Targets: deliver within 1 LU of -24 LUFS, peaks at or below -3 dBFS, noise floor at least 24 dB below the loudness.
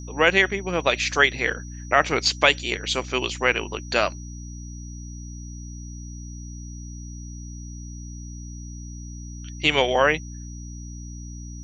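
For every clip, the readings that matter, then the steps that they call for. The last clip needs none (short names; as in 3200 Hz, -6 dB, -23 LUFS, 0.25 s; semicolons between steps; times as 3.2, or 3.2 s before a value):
hum 60 Hz; harmonics up to 300 Hz; hum level -34 dBFS; steady tone 5800 Hz; tone level -45 dBFS; loudness -21.5 LUFS; peak -2.0 dBFS; loudness target -24.0 LUFS
-> notches 60/120/180/240/300 Hz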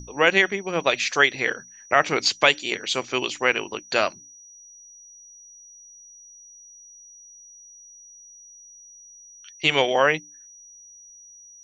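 hum none; steady tone 5800 Hz; tone level -45 dBFS
-> notch 5800 Hz, Q 30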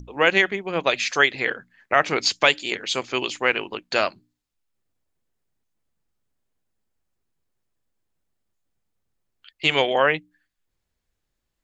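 steady tone none; loudness -21.5 LUFS; peak -1.5 dBFS; loudness target -24.0 LUFS
-> gain -2.5 dB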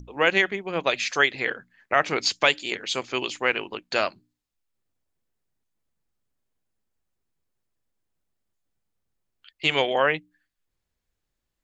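loudness -24.0 LUFS; peak -4.0 dBFS; noise floor -82 dBFS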